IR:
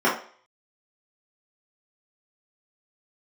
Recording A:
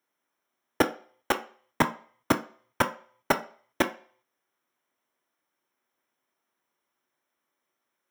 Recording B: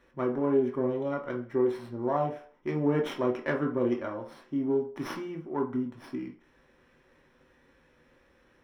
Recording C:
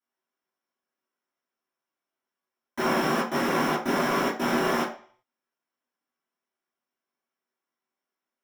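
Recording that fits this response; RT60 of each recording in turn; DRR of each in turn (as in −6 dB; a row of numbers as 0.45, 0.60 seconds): C; 0.50, 0.50, 0.50 seconds; 6.5, 0.5, −9.0 decibels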